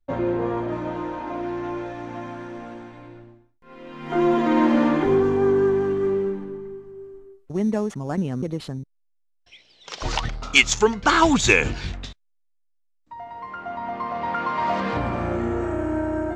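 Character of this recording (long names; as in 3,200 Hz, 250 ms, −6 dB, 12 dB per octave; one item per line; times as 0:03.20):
background noise floor −67 dBFS
spectral slope −4.5 dB per octave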